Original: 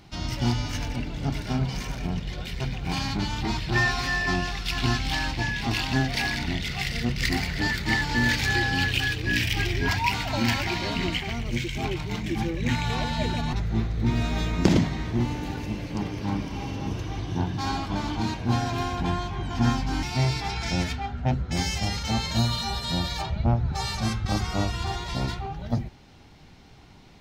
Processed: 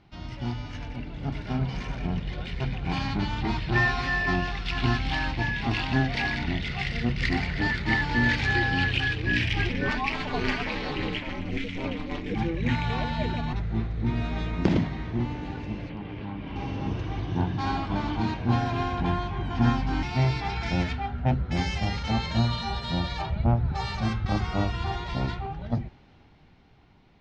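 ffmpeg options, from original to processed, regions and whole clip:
ffmpeg -i in.wav -filter_complex "[0:a]asettb=1/sr,asplit=3[link_01][link_02][link_03];[link_01]atrim=end=9.694[link_04];[link_02]atrim=start=9.69:end=12.34,asetpts=PTS-STARTPTS,afade=type=in:duration=0.004:curve=qsin,afade=type=out:start_time=2.646:duration=0.004:curve=qsin,aecho=1:1:6.8:0.54,atrim=end_sample=116865,aeval=exprs='val(0)*sin(2*PI*140*n/s)':channel_layout=same[link_05];[link_03]atrim=start=12.336[link_06];[link_04][link_05]acrossfade=duration=0.004:curve1=hsin:curve2=qsin[link_07];[link_07][link_06]acrossfade=duration=0.004:curve1=qsin:curve2=hsin,asettb=1/sr,asplit=3[link_08][link_09][link_10];[link_08]atrim=end=15.894[link_11];[link_09]atrim=start=15.89:end=16.56,asetpts=PTS-STARTPTS,afade=type=in:duration=0.004:curve=qsin,afade=type=out:start_time=0.666:duration=0.004:curve=qsin,highshelf=frequency=4600:width_type=q:width=1.5:gain=-11.5,acompressor=threshold=-31dB:ratio=4:attack=3.2:release=140:knee=1:detection=peak[link_12];[link_10]atrim=start=16.556[link_13];[link_11][link_12]acrossfade=duration=0.004:curve1=hsin:curve2=qsin[link_14];[link_14][link_13]acrossfade=duration=0.004:curve1=qsin:curve2=hsin,lowpass=3200,dynaudnorm=framelen=140:gausssize=21:maxgain=8dB,volume=-7dB" out.wav

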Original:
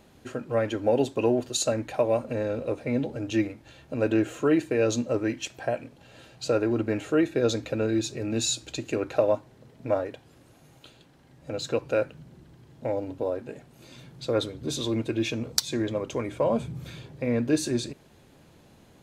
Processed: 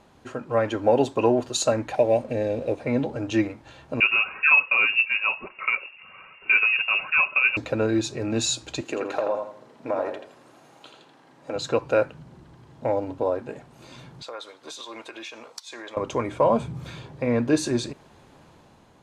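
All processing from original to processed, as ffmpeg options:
ffmpeg -i in.wav -filter_complex "[0:a]asettb=1/sr,asplit=3[link_01][link_02][link_03];[link_01]atrim=end=1.954[link_04];[link_02]atrim=start=1.95:end=2.8,asetpts=PTS-STARTPTS,afade=type=in:duration=0.004:curve=qsin,afade=type=out:start_time=0.846:duration=0.004:curve=qsin,asuperstop=centerf=1200:order=4:qfactor=1.2,aeval=exprs='sgn(val(0))*max(abs(val(0))-0.00188,0)':channel_layout=same[link_05];[link_03]atrim=start=2.796[link_06];[link_04][link_05]acrossfade=duration=0.004:curve1=hsin:curve2=qsin[link_07];[link_07][link_06]acrossfade=duration=0.004:curve1=qsin:curve2=hsin,asettb=1/sr,asplit=3[link_08][link_09][link_10];[link_08]atrim=end=4.004[link_11];[link_09]atrim=start=4:end=7.57,asetpts=PTS-STARTPTS,afade=type=in:duration=0.004:curve=qsin,afade=type=out:start_time=3.566:duration=0.004:curve=qsin,aphaser=in_gain=1:out_gain=1:delay=3.9:decay=0.39:speed=1:type=triangular,lowpass=frequency=2500:width_type=q:width=0.5098,lowpass=frequency=2500:width_type=q:width=0.6013,lowpass=frequency=2500:width_type=q:width=0.9,lowpass=frequency=2500:width_type=q:width=2.563,afreqshift=-2900[link_12];[link_10]atrim=start=7.566[link_13];[link_11][link_12]acrossfade=duration=0.004:curve1=hsin:curve2=qsin[link_14];[link_14][link_13]acrossfade=duration=0.004:curve1=qsin:curve2=hsin,asettb=1/sr,asplit=3[link_15][link_16][link_17];[link_15]atrim=end=8.814[link_18];[link_16]atrim=start=8.81:end=11.56,asetpts=PTS-STARTPTS,afade=type=in:duration=0.004:curve=qsin,afade=type=out:start_time=2.746:duration=0.004:curve=qsin,highpass=240,acompressor=threshold=-27dB:ratio=4:attack=3.2:release=140:knee=1:detection=peak,asplit=2[link_19][link_20];[link_20]adelay=83,lowpass=frequency=4600:poles=1,volume=-4.5dB,asplit=2[link_21][link_22];[link_22]adelay=83,lowpass=frequency=4600:poles=1,volume=0.33,asplit=2[link_23][link_24];[link_24]adelay=83,lowpass=frequency=4600:poles=1,volume=0.33,asplit=2[link_25][link_26];[link_26]adelay=83,lowpass=frequency=4600:poles=1,volume=0.33[link_27];[link_19][link_21][link_23][link_25][link_27]amix=inputs=5:normalize=0,atrim=end_sample=121275[link_28];[link_17]atrim=start=11.556[link_29];[link_18][link_28]acrossfade=duration=0.004:curve1=hsin:curve2=qsin[link_30];[link_30][link_29]acrossfade=duration=0.004:curve1=qsin:curve2=hsin,asettb=1/sr,asplit=3[link_31][link_32][link_33];[link_31]atrim=end=14.224[link_34];[link_32]atrim=start=14.22:end=15.97,asetpts=PTS-STARTPTS,afade=type=in:duration=0.004:curve=qsin,afade=type=out:start_time=1.746:duration=0.004:curve=qsin,highpass=790,acompressor=threshold=-38dB:ratio=5:attack=3.2:release=140:knee=1:detection=peak[link_35];[link_33]atrim=start=15.966[link_36];[link_34][link_35]acrossfade=duration=0.004:curve1=hsin:curve2=qsin[link_37];[link_37][link_36]acrossfade=duration=0.004:curve1=qsin:curve2=hsin,lowpass=9600,equalizer=frequency=1000:width=1.3:gain=8,dynaudnorm=framelen=100:gausssize=11:maxgain=3.5dB,volume=-1.5dB" out.wav

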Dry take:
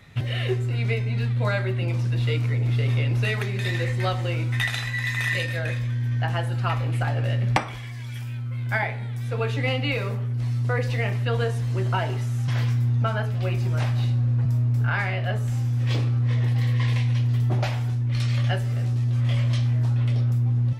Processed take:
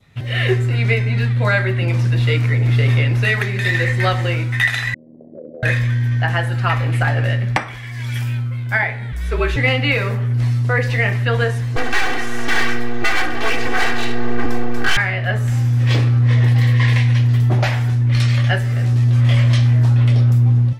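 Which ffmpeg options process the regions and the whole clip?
ffmpeg -i in.wav -filter_complex "[0:a]asettb=1/sr,asplit=3[link_01][link_02][link_03];[link_01]atrim=end=4.944[link_04];[link_02]atrim=start=4.94:end=5.63,asetpts=PTS-STARTPTS,afade=type=in:duration=0.004:curve=qsin,afade=type=out:start_time=0.686:duration=0.004:curve=qsin,asuperpass=centerf=340:order=12:qfactor=0.82,acompressor=threshold=-36dB:ratio=6:attack=3.2:release=140:knee=1:detection=peak,tremolo=f=78:d=0.857[link_05];[link_03]atrim=start=5.626[link_06];[link_04][link_05]acrossfade=duration=0.004:curve1=hsin:curve2=qsin[link_07];[link_07][link_06]acrossfade=duration=0.004:curve1=qsin:curve2=hsin,asettb=1/sr,asplit=3[link_08][link_09][link_10];[link_08]atrim=end=9.124[link_11];[link_09]atrim=start=9.12:end=9.56,asetpts=PTS-STARTPTS,afade=type=in:duration=0.004:curve=qsin,afade=type=out:start_time=0.436:duration=0.004:curve=qsin,bandreject=frequency=860:width=9.3,afreqshift=-60[link_12];[link_10]atrim=start=9.556[link_13];[link_11][link_12]acrossfade=duration=0.004:curve1=hsin:curve2=qsin[link_14];[link_14][link_13]acrossfade=duration=0.004:curve1=qsin:curve2=hsin,asettb=1/sr,asplit=3[link_15][link_16][link_17];[link_15]atrim=end=11.764[link_18];[link_16]atrim=start=11.76:end=14.97,asetpts=PTS-STARTPTS,afade=type=in:duration=0.004:curve=qsin,afade=type=out:start_time=3.206:duration=0.004:curve=qsin,asplit=2[link_19][link_20];[link_20]highpass=frequency=720:poles=1,volume=23dB,asoftclip=type=tanh:threshold=-12dB[link_21];[link_19][link_21]amix=inputs=2:normalize=0,lowpass=frequency=2000:poles=1,volume=-6dB,aeval=exprs='abs(val(0))':channel_layout=same,aecho=1:1:2.6:0.94,atrim=end_sample=141561[link_22];[link_17]atrim=start=14.966[link_23];[link_18][link_22]acrossfade=duration=0.004:curve1=hsin:curve2=qsin[link_24];[link_24][link_23]acrossfade=duration=0.004:curve1=qsin:curve2=hsin,adynamicequalizer=threshold=0.00631:dfrequency=1800:dqfactor=2.2:tfrequency=1800:tqfactor=2.2:attack=5:release=100:ratio=0.375:range=4:mode=boostabove:tftype=bell,dynaudnorm=framelen=120:gausssize=5:maxgain=14.5dB,volume=-3.5dB" out.wav

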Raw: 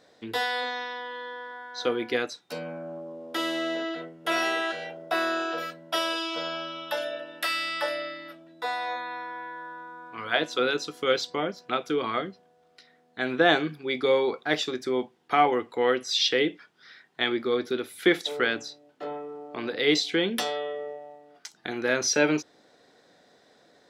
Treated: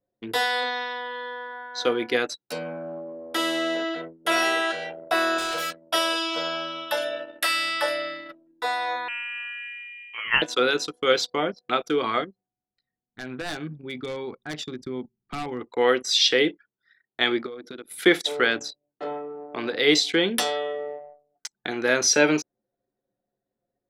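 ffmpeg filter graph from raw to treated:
ffmpeg -i in.wav -filter_complex "[0:a]asettb=1/sr,asplit=3[link_01][link_02][link_03];[link_01]atrim=end=5.384[link_04];[link_02]atrim=start=5.38:end=5.9,asetpts=PTS-STARTPTS,afade=type=in:duration=0.004:curve=qsin,afade=type=out:start_time=0.516:duration=0.004:curve=qsin,highshelf=frequency=2500:gain=9.5,volume=29dB,asoftclip=hard,volume=-29dB[link_05];[link_03]atrim=start=5.896[link_06];[link_04][link_05]acrossfade=duration=0.004:curve1=hsin:curve2=qsin[link_07];[link_07][link_06]acrossfade=duration=0.004:curve1=qsin:curve2=hsin,asettb=1/sr,asplit=3[link_08][link_09][link_10];[link_08]atrim=end=9.084[link_11];[link_09]atrim=start=9.08:end=10.42,asetpts=PTS-STARTPTS,afade=type=in:duration=0.004:curve=qsin,afade=type=out:start_time=1.336:duration=0.004:curve=qsin,highpass=210,lowpass=frequency=2900:width_type=q:width=0.5098,lowpass=frequency=2900:width_type=q:width=0.6013,lowpass=frequency=2900:width_type=q:width=0.9,lowpass=frequency=2900:width_type=q:width=2.563,afreqshift=-3400[link_12];[link_10]atrim=start=10.416[link_13];[link_11][link_12]acrossfade=duration=0.004:curve1=hsin:curve2=qsin[link_14];[link_14][link_13]acrossfade=duration=0.004:curve1=qsin:curve2=hsin,asettb=1/sr,asplit=3[link_15][link_16][link_17];[link_15]atrim=end=12.244[link_18];[link_16]atrim=start=12.24:end=15.61,asetpts=PTS-STARTPTS,afade=type=in:duration=0.004:curve=qsin,afade=type=out:start_time=3.366:duration=0.004:curve=qsin,acompressor=threshold=-51dB:ratio=1.5:attack=3.2:release=140:knee=1:detection=peak,aeval=exprs='0.0447*(abs(mod(val(0)/0.0447+3,4)-2)-1)':channel_layout=same,asubboost=boost=9.5:cutoff=200[link_19];[link_17]atrim=start=15.606[link_20];[link_18][link_19]acrossfade=duration=0.004:curve1=hsin:curve2=qsin[link_21];[link_21][link_20]acrossfade=duration=0.004:curve1=qsin:curve2=hsin,asettb=1/sr,asplit=3[link_22][link_23][link_24];[link_22]atrim=end=17.464[link_25];[link_23]atrim=start=17.46:end=17.97,asetpts=PTS-STARTPTS,afade=type=in:duration=0.004:curve=qsin,afade=type=out:start_time=0.506:duration=0.004:curve=qsin,bandreject=frequency=390:width=8.2,acompressor=threshold=-36dB:ratio=10:attack=3.2:release=140:knee=1:detection=peak[link_26];[link_24]atrim=start=17.966[link_27];[link_25][link_26]acrossfade=duration=0.004:curve1=hsin:curve2=qsin[link_28];[link_28][link_27]acrossfade=duration=0.004:curve1=qsin:curve2=hsin,equalizer=frequency=9200:width_type=o:width=0.8:gain=6,anlmdn=0.251,lowshelf=frequency=220:gain=-4,volume=4dB" out.wav

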